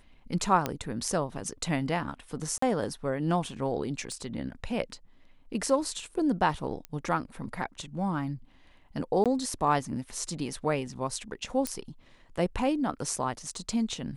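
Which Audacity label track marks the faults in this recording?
0.660000	0.660000	pop -13 dBFS
2.580000	2.620000	gap 44 ms
4.120000	4.120000	pop -28 dBFS
6.850000	6.850000	pop -22 dBFS
9.240000	9.260000	gap 17 ms
11.670000	11.670000	pop -14 dBFS

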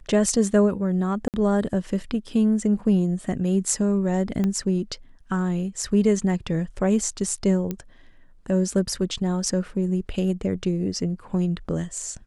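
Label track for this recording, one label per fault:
1.280000	1.340000	gap 58 ms
4.440000	4.440000	pop -14 dBFS
7.710000	7.710000	pop -15 dBFS

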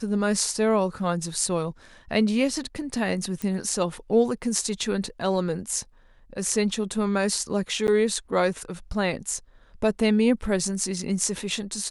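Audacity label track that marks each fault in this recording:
3.420000	3.420000	pop
7.870000	7.880000	gap 9.9 ms

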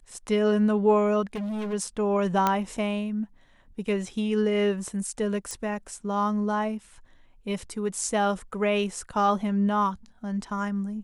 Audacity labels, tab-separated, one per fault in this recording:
1.350000	1.740000	clipped -28.5 dBFS
2.470000	2.470000	pop -9 dBFS
5.510000	5.510000	pop

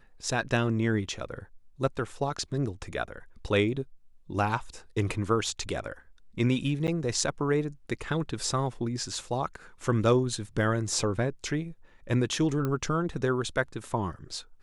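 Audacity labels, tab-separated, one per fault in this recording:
6.870000	6.880000	gap 8.8 ms
12.650000	12.650000	pop -18 dBFS

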